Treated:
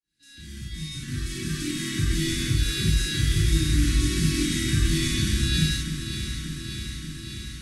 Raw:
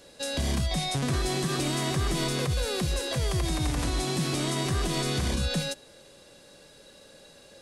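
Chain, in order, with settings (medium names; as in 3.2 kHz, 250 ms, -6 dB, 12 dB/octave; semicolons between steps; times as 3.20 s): fade-in on the opening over 2.52 s; Chebyshev band-stop 320–1500 Hz, order 3; peaking EQ 110 Hz +12 dB 0.21 oct; feedback comb 280 Hz, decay 0.15 s, harmonics all, mix 40%; echo whose repeats swap between lows and highs 292 ms, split 1.2 kHz, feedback 85%, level -8 dB; gated-style reverb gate 120 ms flat, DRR -7 dB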